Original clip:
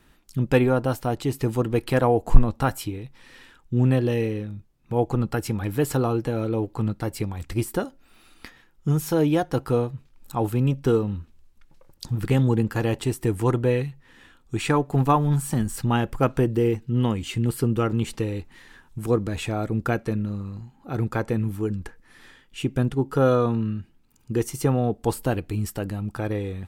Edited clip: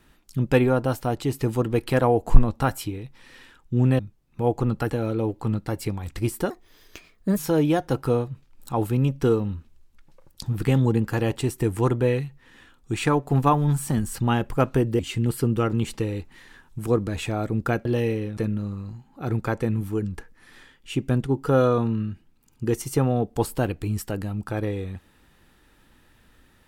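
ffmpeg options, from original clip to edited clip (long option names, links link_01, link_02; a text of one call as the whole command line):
ffmpeg -i in.wav -filter_complex "[0:a]asplit=8[link_01][link_02][link_03][link_04][link_05][link_06][link_07][link_08];[link_01]atrim=end=3.992[link_09];[link_02]atrim=start=4.508:end=5.422[link_10];[link_03]atrim=start=6.238:end=7.844[link_11];[link_04]atrim=start=7.84:end=9,asetpts=PTS-STARTPTS,asetrate=58653,aresample=44100,atrim=end_sample=38463,asetpts=PTS-STARTPTS[link_12];[link_05]atrim=start=8.996:end=16.622[link_13];[link_06]atrim=start=17.188:end=20.052[link_14];[link_07]atrim=start=3.988:end=4.512[link_15];[link_08]atrim=start=20.048[link_16];[link_09][link_10]acrossfade=duration=0.004:curve1=hsin:curve2=hsin[link_17];[link_17][link_11]acrossfade=duration=0.004:curve1=hsin:curve2=hsin[link_18];[link_18][link_12]acrossfade=duration=0.004:curve1=hsin:curve2=hsin[link_19];[link_19][link_13]acrossfade=duration=0.004:curve1=hsin:curve2=hsin[link_20];[link_20][link_14]acrossfade=duration=0.004:curve1=hsin:curve2=hsin[link_21];[link_21][link_15]acrossfade=duration=0.004:curve1=hsin:curve2=hsin[link_22];[link_22][link_16]acrossfade=duration=0.004:curve1=hsin:curve2=hsin" out.wav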